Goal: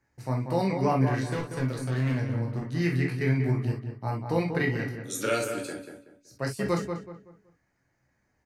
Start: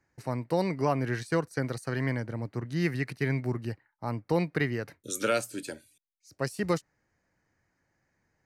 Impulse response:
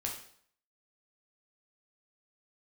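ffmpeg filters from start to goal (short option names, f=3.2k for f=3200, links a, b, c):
-filter_complex "[0:a]asettb=1/sr,asplit=3[a][b][c];[a]atrim=end=1.264[d];[b]atrim=start=1.26:end=2.72,asetpts=PTS-STARTPTS,afade=t=in:d=0.004:c=qsin,afade=t=out:st=1.456:d=0.004:c=qsin,volume=26dB,asoftclip=hard,volume=-26dB[e];[c]atrim=start=2.716[f];[d][e]acrossfade=d=0.004:c1=hsin:c2=qsin[g];[g][f]acrossfade=d=0.004:c1=qsin:c2=hsin,asplit=2[h][i];[i]adelay=188,lowpass=f=1.9k:p=1,volume=-6dB,asplit=2[j][k];[k]adelay=188,lowpass=f=1.9k:p=1,volume=0.33,asplit=2[l][m];[m]adelay=188,lowpass=f=1.9k:p=1,volume=0.33,asplit=2[n][o];[o]adelay=188,lowpass=f=1.9k:p=1,volume=0.33[p];[h][j][l][n][p]amix=inputs=5:normalize=0[q];[1:a]atrim=start_sample=2205,atrim=end_sample=3087[r];[q][r]afir=irnorm=-1:irlink=0"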